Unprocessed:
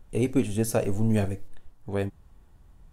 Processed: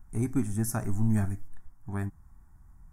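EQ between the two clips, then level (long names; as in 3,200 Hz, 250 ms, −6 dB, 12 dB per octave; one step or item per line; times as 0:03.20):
parametric band 530 Hz −3.5 dB 0.51 octaves
parametric band 4,100 Hz −14 dB 0.32 octaves
phaser with its sweep stopped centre 1,200 Hz, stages 4
0.0 dB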